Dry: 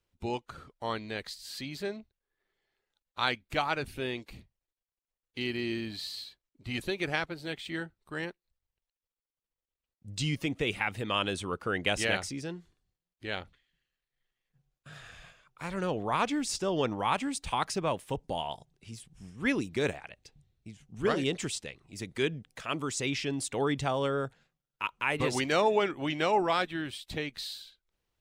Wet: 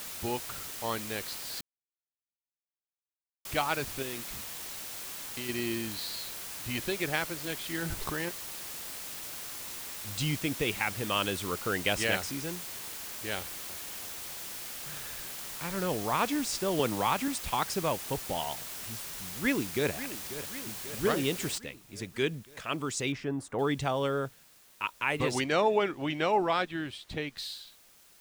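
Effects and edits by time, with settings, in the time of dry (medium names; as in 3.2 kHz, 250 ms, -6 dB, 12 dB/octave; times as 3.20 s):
1.61–3.45 s: mute
4.02–5.49 s: compression, threshold -35 dBFS
6.77–7.24 s: peaking EQ 8.9 kHz -11 dB 0.21 oct
7.82–8.29 s: level flattener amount 100%
13.36–15.77 s: two-band feedback delay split 1.5 kHz, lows 332 ms, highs 93 ms, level -13 dB
16.79–17.28 s: three bands compressed up and down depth 70%
19.12–19.93 s: echo throw 540 ms, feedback 65%, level -12.5 dB
21.58 s: noise floor step -41 dB -59 dB
23.12–23.59 s: resonant high shelf 2 kHz -11.5 dB, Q 1.5
25.44–27.37 s: treble shelf 6.7 kHz -9 dB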